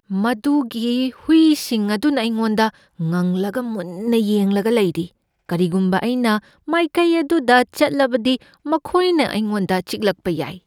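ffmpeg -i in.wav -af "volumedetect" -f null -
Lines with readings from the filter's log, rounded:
mean_volume: -18.6 dB
max_volume: -2.2 dB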